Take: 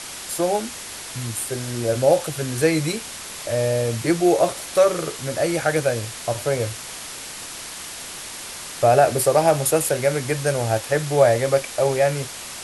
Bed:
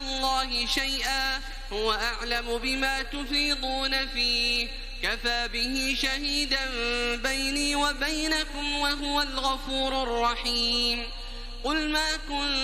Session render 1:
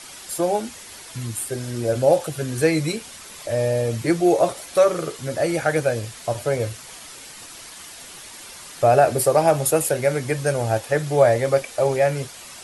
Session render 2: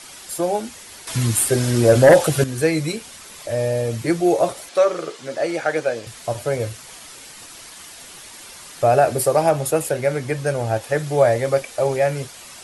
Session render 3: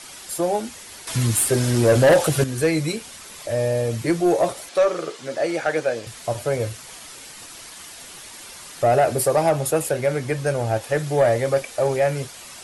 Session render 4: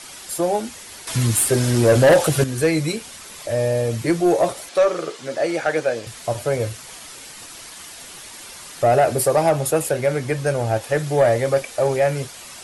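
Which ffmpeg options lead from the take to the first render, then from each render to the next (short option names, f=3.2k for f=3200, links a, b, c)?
-af "afftdn=nr=8:nf=-35"
-filter_complex "[0:a]asettb=1/sr,asplit=3[a][b][c];[a]atrim=end=1.074[d];[b]atrim=start=1.07:end=2.44,asetpts=PTS-STARTPTS,afade=t=in:d=0.004:c=qsin,afade=t=out:st=1.366:d=0.004:c=qsin,aeval=exprs='0.562*sin(PI/2*2*val(0)/0.562)':c=same[e];[c]atrim=start=2.436[f];[d][e]acrossfade=d=0.004:c1=hsin:c2=qsin[g];[g][f]acrossfade=d=0.004:c1=qsin:c2=hsin,asettb=1/sr,asplit=3[h][i][j];[h]atrim=end=4.694[k];[i]atrim=start=4.69:end=6.07,asetpts=PTS-STARTPTS,afade=t=in:d=0.004:c=qsin,afade=t=out:st=1.376:d=0.004:c=qsin,highpass=270,lowpass=6.8k[l];[j]atrim=start=6.066[m];[k][l]acrossfade=d=0.004:c1=hsin:c2=qsin[n];[n][m]acrossfade=d=0.004:c1=qsin:c2=hsin,asettb=1/sr,asplit=3[o][p][q];[o]atrim=end=9.494[r];[p]atrim=start=9.49:end=10.81,asetpts=PTS-STARTPTS,afade=t=in:d=0.004:c=qsin,afade=t=out:st=1.316:d=0.004:c=qsin,highshelf=f=6.1k:g=-6[s];[q]atrim=start=10.806[t];[r][s]acrossfade=d=0.004:c1=hsin:c2=qsin[u];[u][t]acrossfade=d=0.004:c1=qsin:c2=hsin"
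-af "asoftclip=type=tanh:threshold=-9.5dB"
-af "volume=1.5dB"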